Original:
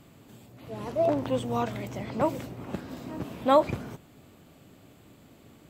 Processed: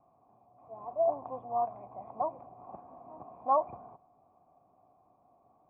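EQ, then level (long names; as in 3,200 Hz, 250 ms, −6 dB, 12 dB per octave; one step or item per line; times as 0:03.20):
formant resonators in series a
high-shelf EQ 2,300 Hz −10.5 dB
+6.5 dB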